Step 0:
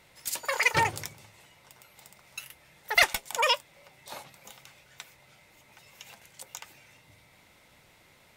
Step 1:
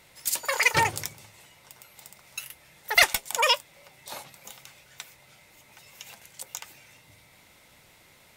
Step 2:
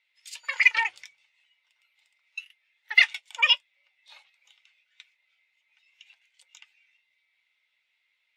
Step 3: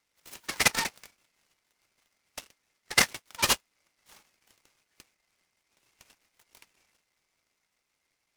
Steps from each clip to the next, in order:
high shelf 4800 Hz +5.5 dB; gain +1.5 dB
in parallel at +2.5 dB: limiter -13.5 dBFS, peak gain reduction 10.5 dB; on the sum: band-pass 2800 Hz, Q 1.4; spectral expander 1.5:1
noise-modulated delay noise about 3000 Hz, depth 0.084 ms; gain -4.5 dB

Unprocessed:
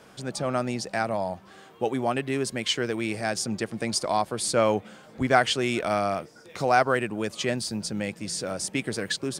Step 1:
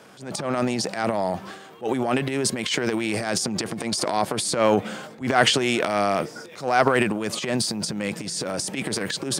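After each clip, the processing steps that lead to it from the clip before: transient shaper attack -12 dB, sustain +10 dB; HPF 120 Hz 12 dB/oct; gain +3.5 dB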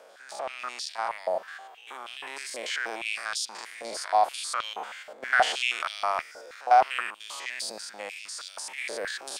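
stepped spectrum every 0.1 s; stepped high-pass 6.3 Hz 570–3400 Hz; gain -6.5 dB

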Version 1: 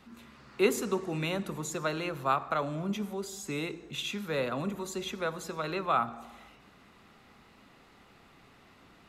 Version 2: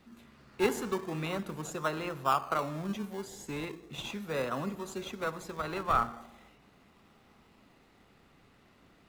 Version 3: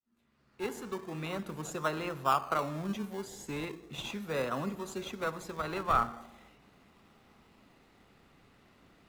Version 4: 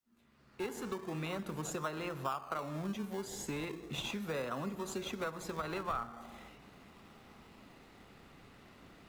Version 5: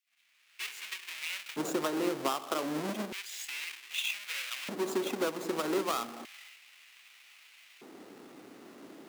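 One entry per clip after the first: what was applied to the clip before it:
in parallel at -5.5 dB: decimation with a swept rate 27×, swing 60% 0.38 Hz; on the sum: dynamic EQ 1200 Hz, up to +7 dB, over -43 dBFS, Q 1.2; gain -6 dB
opening faded in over 1.74 s
compressor 4:1, threshold -41 dBFS, peak gain reduction 16 dB; gain +4.5 dB
half-waves squared off; LFO high-pass square 0.32 Hz 310–2400 Hz

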